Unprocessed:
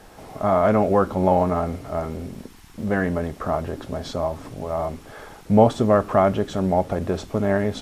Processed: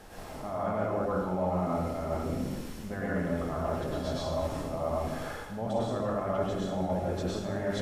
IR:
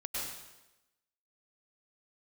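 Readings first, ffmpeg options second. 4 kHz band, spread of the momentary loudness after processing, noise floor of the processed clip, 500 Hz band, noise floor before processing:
−4.5 dB, 7 LU, −42 dBFS, −10.0 dB, −46 dBFS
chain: -filter_complex "[0:a]areverse,acompressor=threshold=-31dB:ratio=6,areverse[link_01];[1:a]atrim=start_sample=2205[link_02];[link_01][link_02]afir=irnorm=-1:irlink=0"

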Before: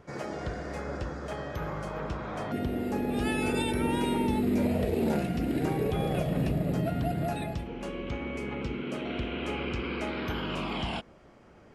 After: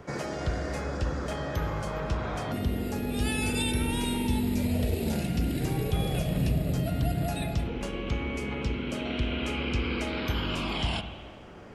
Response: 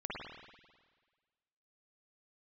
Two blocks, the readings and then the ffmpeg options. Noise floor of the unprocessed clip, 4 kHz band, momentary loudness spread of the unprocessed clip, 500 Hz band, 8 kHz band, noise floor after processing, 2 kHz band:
−55 dBFS, +5.0 dB, 8 LU, −2.0 dB, +7.5 dB, −44 dBFS, +2.0 dB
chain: -filter_complex "[0:a]acrossover=split=130|3000[link_01][link_02][link_03];[link_02]acompressor=threshold=-40dB:ratio=6[link_04];[link_01][link_04][link_03]amix=inputs=3:normalize=0,asplit=2[link_05][link_06];[1:a]atrim=start_sample=2205[link_07];[link_06][link_07]afir=irnorm=-1:irlink=0,volume=-7dB[link_08];[link_05][link_08]amix=inputs=2:normalize=0,volume=5.5dB"

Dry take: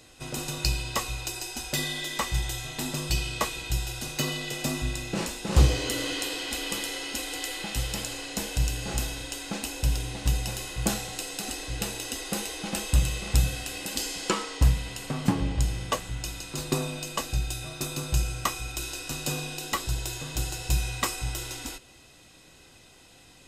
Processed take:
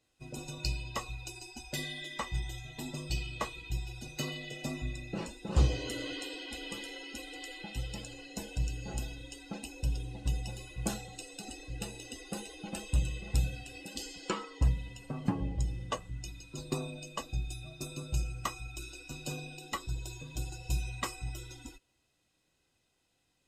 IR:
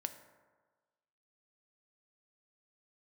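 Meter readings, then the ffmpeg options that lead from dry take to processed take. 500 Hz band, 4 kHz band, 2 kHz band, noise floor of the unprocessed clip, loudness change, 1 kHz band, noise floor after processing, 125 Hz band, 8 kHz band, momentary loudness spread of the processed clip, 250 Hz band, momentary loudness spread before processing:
−8.0 dB, −10.5 dB, −9.0 dB, −54 dBFS, −8.5 dB, −8.0 dB, −77 dBFS, −6.5 dB, −12.5 dB, 10 LU, −7.0 dB, 7 LU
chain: -filter_complex "[0:a]asplit=2[link_01][link_02];[link_02]highpass=frequency=82:poles=1[link_03];[1:a]atrim=start_sample=2205,lowshelf=frequency=120:gain=8.5[link_04];[link_03][link_04]afir=irnorm=-1:irlink=0,volume=-12.5dB[link_05];[link_01][link_05]amix=inputs=2:normalize=0,afftdn=noise_reduction=16:noise_floor=-34,adynamicequalizer=threshold=0.00794:dfrequency=4200:dqfactor=0.7:tfrequency=4200:tqfactor=0.7:attack=5:release=100:ratio=0.375:range=2:mode=cutabove:tftype=highshelf,volume=-8.5dB"

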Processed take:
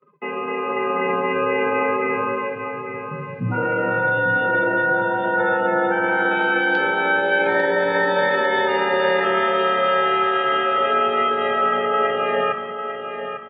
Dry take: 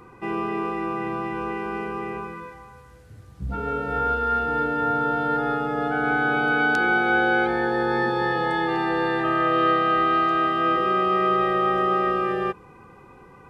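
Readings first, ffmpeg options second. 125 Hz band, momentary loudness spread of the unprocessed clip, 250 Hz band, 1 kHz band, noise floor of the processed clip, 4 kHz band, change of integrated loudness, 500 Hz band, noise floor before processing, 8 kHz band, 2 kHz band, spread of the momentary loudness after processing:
+1.0 dB, 10 LU, −1.5 dB, +2.0 dB, −31 dBFS, +6.0 dB, +3.0 dB, +6.0 dB, −49 dBFS, can't be measured, +4.5 dB, 10 LU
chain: -filter_complex "[0:a]afftdn=noise_reduction=21:noise_floor=-37,agate=range=-20dB:threshold=-53dB:ratio=16:detection=peak,adynamicequalizer=threshold=0.00224:dfrequency=160:dqfactor=5.6:tfrequency=160:tqfactor=5.6:attack=5:release=100:ratio=0.375:range=2:mode=cutabove:tftype=bell,asplit=2[link_01][link_02];[link_02]acompressor=threshold=-31dB:ratio=20,volume=0dB[link_03];[link_01][link_03]amix=inputs=2:normalize=0,alimiter=limit=-18dB:level=0:latency=1:release=23,dynaudnorm=framelen=130:gausssize=11:maxgain=7dB,afreqshift=51,crystalizer=i=6.5:c=0,flanger=delay=8:depth=8.1:regen=-78:speed=0.35:shape=sinusoidal,highpass=110,equalizer=frequency=150:width_type=q:width=4:gain=7,equalizer=frequency=570:width_type=q:width=4:gain=6,equalizer=frequency=1400:width_type=q:width=4:gain=-3,lowpass=frequency=3200:width=0.5412,lowpass=frequency=3200:width=1.3066,aecho=1:1:848|1696|2544|3392:0.376|0.124|0.0409|0.0135"

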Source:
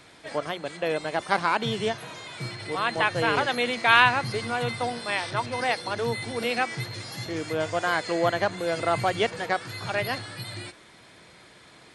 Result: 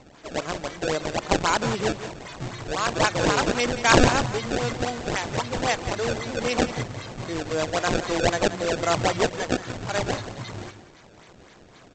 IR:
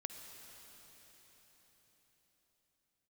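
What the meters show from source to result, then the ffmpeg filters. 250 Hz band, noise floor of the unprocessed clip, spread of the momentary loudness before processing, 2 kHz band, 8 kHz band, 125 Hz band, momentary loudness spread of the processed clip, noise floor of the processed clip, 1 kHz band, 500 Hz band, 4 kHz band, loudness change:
+6.0 dB, −52 dBFS, 12 LU, −1.5 dB, +10.5 dB, +5.0 dB, 12 LU, −51 dBFS, 0.0 dB, +2.5 dB, +1.0 dB, +1.5 dB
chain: -af "aresample=16000,acrusher=samples=9:mix=1:aa=0.000001:lfo=1:lforange=14.4:lforate=3.8,aresample=44100,aecho=1:1:178:0.251,volume=1.5dB"

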